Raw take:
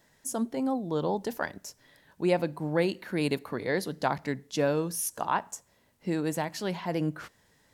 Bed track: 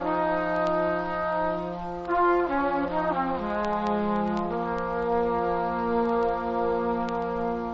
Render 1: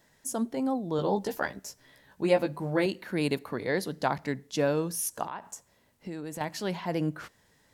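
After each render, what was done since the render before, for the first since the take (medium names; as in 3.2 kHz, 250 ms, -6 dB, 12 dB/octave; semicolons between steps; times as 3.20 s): 0.97–2.86 s: doubling 15 ms -4 dB; 5.26–6.41 s: compression 4:1, threshold -35 dBFS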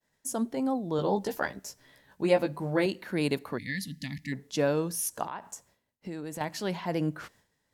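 3.58–4.33 s: time-frequency box 290–1700 Hz -29 dB; expander -56 dBFS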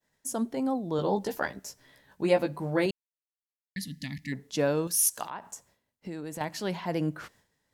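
2.91–3.76 s: mute; 4.87–5.30 s: tilt shelf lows -8 dB, about 1.4 kHz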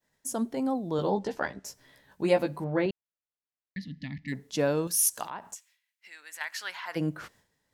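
1.10–1.65 s: distance through air 81 m; 2.64–4.28 s: distance through air 260 m; 5.54–6.95 s: resonant high-pass 2.6 kHz -> 1.3 kHz, resonance Q 2.2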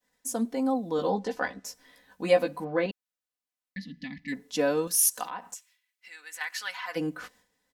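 bass shelf 260 Hz -5.5 dB; comb 4 ms, depth 74%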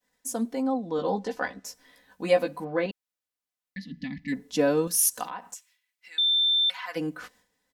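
0.62–1.08 s: distance through air 78 m; 3.91–5.32 s: bass shelf 350 Hz +7.5 dB; 6.18–6.70 s: bleep 3.56 kHz -19.5 dBFS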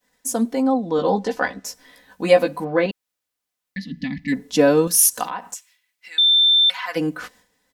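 trim +8 dB; peak limiter -3 dBFS, peak gain reduction 2.5 dB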